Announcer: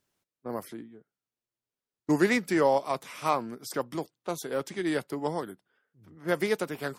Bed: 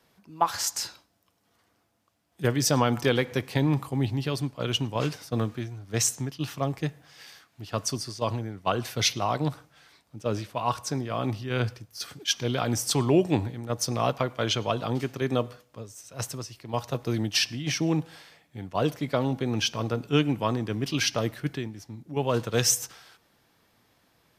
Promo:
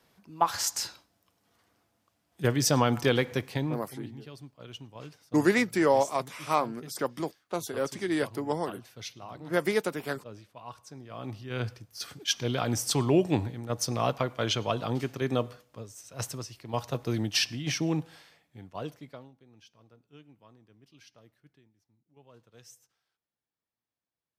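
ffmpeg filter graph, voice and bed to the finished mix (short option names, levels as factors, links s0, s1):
-filter_complex "[0:a]adelay=3250,volume=1.06[s0];[1:a]volume=5.01,afade=t=out:st=3.28:d=0.62:silence=0.158489,afade=t=in:st=10.95:d=1.11:silence=0.177828,afade=t=out:st=17.68:d=1.64:silence=0.0375837[s1];[s0][s1]amix=inputs=2:normalize=0"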